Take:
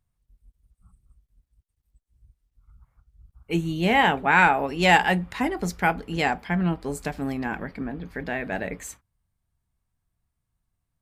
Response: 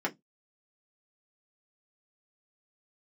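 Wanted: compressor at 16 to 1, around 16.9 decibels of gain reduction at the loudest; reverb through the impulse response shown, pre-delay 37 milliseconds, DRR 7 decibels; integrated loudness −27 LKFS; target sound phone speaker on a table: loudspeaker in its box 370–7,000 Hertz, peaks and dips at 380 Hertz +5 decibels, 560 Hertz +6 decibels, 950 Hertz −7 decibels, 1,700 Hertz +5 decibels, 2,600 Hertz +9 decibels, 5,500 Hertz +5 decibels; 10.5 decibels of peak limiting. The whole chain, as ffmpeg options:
-filter_complex "[0:a]acompressor=threshold=-29dB:ratio=16,alimiter=level_in=4.5dB:limit=-24dB:level=0:latency=1,volume=-4.5dB,asplit=2[link_01][link_02];[1:a]atrim=start_sample=2205,adelay=37[link_03];[link_02][link_03]afir=irnorm=-1:irlink=0,volume=-14dB[link_04];[link_01][link_04]amix=inputs=2:normalize=0,highpass=frequency=370:width=0.5412,highpass=frequency=370:width=1.3066,equalizer=frequency=380:width_type=q:width=4:gain=5,equalizer=frequency=560:width_type=q:width=4:gain=6,equalizer=frequency=950:width_type=q:width=4:gain=-7,equalizer=frequency=1700:width_type=q:width=4:gain=5,equalizer=frequency=2600:width_type=q:width=4:gain=9,equalizer=frequency=5500:width_type=q:width=4:gain=5,lowpass=frequency=7000:width=0.5412,lowpass=frequency=7000:width=1.3066,volume=10dB"

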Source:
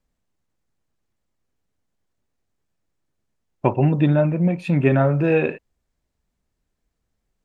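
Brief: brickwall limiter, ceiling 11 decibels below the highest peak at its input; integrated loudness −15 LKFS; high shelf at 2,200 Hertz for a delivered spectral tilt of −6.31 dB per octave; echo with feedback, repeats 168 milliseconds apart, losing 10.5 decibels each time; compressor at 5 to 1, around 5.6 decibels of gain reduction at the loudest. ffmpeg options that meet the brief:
ffmpeg -i in.wav -af "highshelf=frequency=2200:gain=8,acompressor=threshold=-18dB:ratio=5,alimiter=limit=-18dB:level=0:latency=1,aecho=1:1:168|336|504:0.299|0.0896|0.0269,volume=12dB" out.wav

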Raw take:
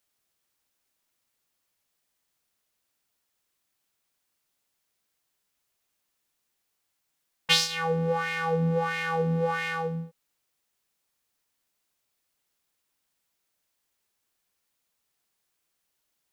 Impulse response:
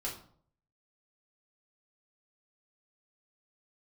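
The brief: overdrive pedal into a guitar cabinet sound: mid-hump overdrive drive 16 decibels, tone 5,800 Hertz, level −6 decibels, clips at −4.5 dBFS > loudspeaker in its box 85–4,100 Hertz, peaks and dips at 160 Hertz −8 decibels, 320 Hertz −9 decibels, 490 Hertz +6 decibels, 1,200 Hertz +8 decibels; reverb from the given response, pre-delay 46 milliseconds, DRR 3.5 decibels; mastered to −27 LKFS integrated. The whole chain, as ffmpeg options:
-filter_complex "[0:a]asplit=2[link_01][link_02];[1:a]atrim=start_sample=2205,adelay=46[link_03];[link_02][link_03]afir=irnorm=-1:irlink=0,volume=-5dB[link_04];[link_01][link_04]amix=inputs=2:normalize=0,asplit=2[link_05][link_06];[link_06]highpass=frequency=720:poles=1,volume=16dB,asoftclip=type=tanh:threshold=-4.5dB[link_07];[link_05][link_07]amix=inputs=2:normalize=0,lowpass=frequency=5800:poles=1,volume=-6dB,highpass=85,equalizer=frequency=160:width_type=q:width=4:gain=-8,equalizer=frequency=320:width_type=q:width=4:gain=-9,equalizer=frequency=490:width_type=q:width=4:gain=6,equalizer=frequency=1200:width_type=q:width=4:gain=8,lowpass=frequency=4100:width=0.5412,lowpass=frequency=4100:width=1.3066,volume=-11dB"

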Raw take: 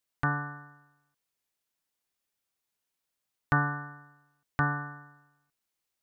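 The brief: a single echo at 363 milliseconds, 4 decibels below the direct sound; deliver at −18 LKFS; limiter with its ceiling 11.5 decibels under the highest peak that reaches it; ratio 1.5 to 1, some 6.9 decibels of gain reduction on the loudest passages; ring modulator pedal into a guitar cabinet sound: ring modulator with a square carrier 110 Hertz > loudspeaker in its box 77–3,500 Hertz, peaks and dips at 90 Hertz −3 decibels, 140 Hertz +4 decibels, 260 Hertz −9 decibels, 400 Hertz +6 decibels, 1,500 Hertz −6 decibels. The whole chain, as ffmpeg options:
ffmpeg -i in.wav -af "acompressor=threshold=-40dB:ratio=1.5,alimiter=level_in=3dB:limit=-24dB:level=0:latency=1,volume=-3dB,aecho=1:1:363:0.631,aeval=exprs='val(0)*sgn(sin(2*PI*110*n/s))':channel_layout=same,highpass=77,equalizer=frequency=90:width_type=q:width=4:gain=-3,equalizer=frequency=140:width_type=q:width=4:gain=4,equalizer=frequency=260:width_type=q:width=4:gain=-9,equalizer=frequency=400:width_type=q:width=4:gain=6,equalizer=frequency=1500:width_type=q:width=4:gain=-6,lowpass=frequency=3500:width=0.5412,lowpass=frequency=3500:width=1.3066,volume=24.5dB" out.wav

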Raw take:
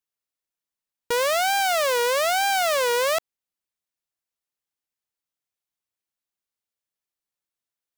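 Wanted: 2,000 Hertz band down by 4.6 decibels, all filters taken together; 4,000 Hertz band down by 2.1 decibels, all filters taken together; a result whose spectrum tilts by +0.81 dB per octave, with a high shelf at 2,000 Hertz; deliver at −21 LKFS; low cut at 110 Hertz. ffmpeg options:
ffmpeg -i in.wav -af "highpass=110,highshelf=frequency=2000:gain=5.5,equalizer=frequency=2000:width_type=o:gain=-8.5,equalizer=frequency=4000:width_type=o:gain=-5.5,volume=0.5dB" out.wav

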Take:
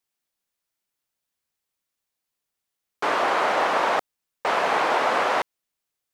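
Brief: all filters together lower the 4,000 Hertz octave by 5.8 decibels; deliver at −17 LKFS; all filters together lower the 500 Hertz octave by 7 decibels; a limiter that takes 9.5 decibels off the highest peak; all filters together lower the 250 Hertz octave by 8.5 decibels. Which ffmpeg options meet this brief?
ffmpeg -i in.wav -af "equalizer=frequency=250:width_type=o:gain=-8.5,equalizer=frequency=500:width_type=o:gain=-7.5,equalizer=frequency=4000:width_type=o:gain=-8,volume=14.5dB,alimiter=limit=-7.5dB:level=0:latency=1" out.wav

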